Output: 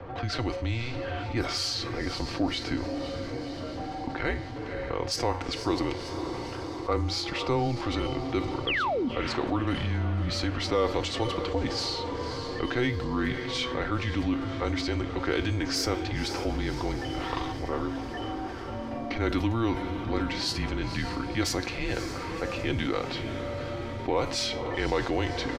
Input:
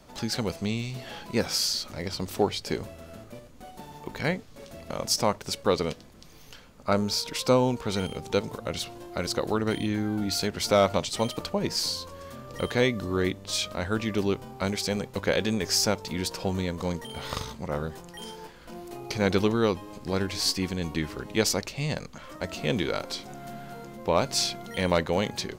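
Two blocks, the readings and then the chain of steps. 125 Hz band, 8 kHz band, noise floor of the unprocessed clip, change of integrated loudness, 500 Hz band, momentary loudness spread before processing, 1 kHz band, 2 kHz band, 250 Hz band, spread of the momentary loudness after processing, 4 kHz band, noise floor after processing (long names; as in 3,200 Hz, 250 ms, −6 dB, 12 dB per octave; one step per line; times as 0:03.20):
+1.0 dB, −7.5 dB, −49 dBFS, −2.0 dB, −3.0 dB, 17 LU, +0.5 dB, +1.0 dB, 0.0 dB, 7 LU, −2.5 dB, −36 dBFS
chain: low-pass that shuts in the quiet parts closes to 1,700 Hz, open at −20 dBFS
bass and treble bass −7 dB, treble −10 dB
comb filter 4.7 ms, depth 45%
in parallel at −10.5 dB: soft clipping −26 dBFS, distortion −7 dB
on the sum: frequency shifter −120 Hz
tuned comb filter 91 Hz, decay 0.48 s, harmonics all, mix 50%
sound drawn into the spectrogram fall, 0:08.67–0:09.09, 220–3,500 Hz −30 dBFS
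on a send: feedback delay with all-pass diffusion 539 ms, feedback 58%, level −13 dB
on the sum: envelope flattener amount 50%
level −1.5 dB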